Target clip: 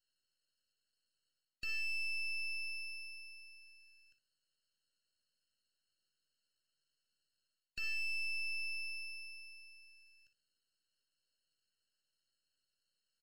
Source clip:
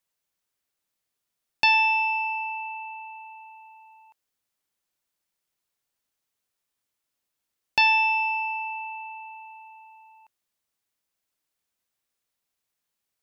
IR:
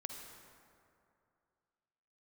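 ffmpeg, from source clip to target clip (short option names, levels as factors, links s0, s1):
-filter_complex "[0:a]asuperstop=centerf=650:order=12:qfactor=0.59,aecho=1:1:1.4:0.78,aresample=11025,asoftclip=type=hard:threshold=0.106,aresample=44100,aderivative,aeval=exprs='max(val(0),0)':c=same,highshelf=f=2200:g=8,areverse,acompressor=threshold=0.00794:ratio=4,areverse,aecho=1:1:13|60:0.266|0.266,acrossover=split=4100[s0][s1];[s1]acompressor=threshold=0.00141:ratio=4:attack=1:release=60[s2];[s0][s2]amix=inputs=2:normalize=0,afftfilt=real='re*eq(mod(floor(b*sr/1024/640),2),0)':imag='im*eq(mod(floor(b*sr/1024/640),2),0)':win_size=1024:overlap=0.75,volume=2.37"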